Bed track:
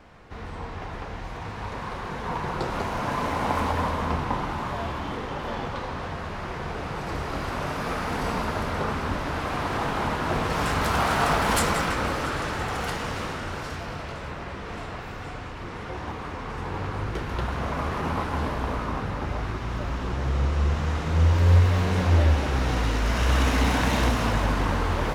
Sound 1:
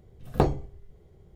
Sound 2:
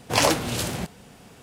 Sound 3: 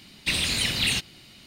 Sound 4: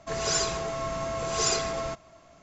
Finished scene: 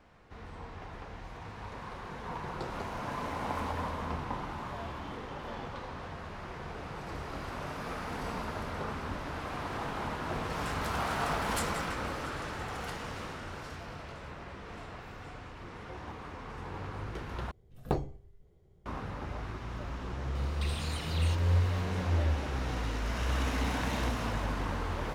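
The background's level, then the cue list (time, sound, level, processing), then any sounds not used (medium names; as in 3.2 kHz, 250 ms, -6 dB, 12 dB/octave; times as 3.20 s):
bed track -9.5 dB
17.51 s: replace with 1 -8.5 dB
20.35 s: add 3 -5 dB + compression, threshold -35 dBFS
not used: 2, 4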